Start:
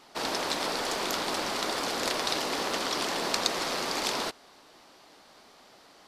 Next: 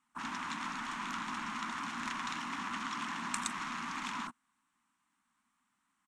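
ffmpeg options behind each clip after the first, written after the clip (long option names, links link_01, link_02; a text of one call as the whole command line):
ffmpeg -i in.wav -af "bandreject=frequency=4800:width=15,afwtdn=0.0112,firequalizer=gain_entry='entry(130,0);entry(230,9);entry(460,-28);entry(1000,6);entry(2700,1);entry(4400,-10);entry(8200,11);entry(13000,-5)':delay=0.05:min_phase=1,volume=-8.5dB" out.wav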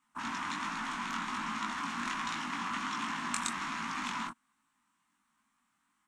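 ffmpeg -i in.wav -af "flanger=delay=18:depth=4.1:speed=1.3,volume=5.5dB" out.wav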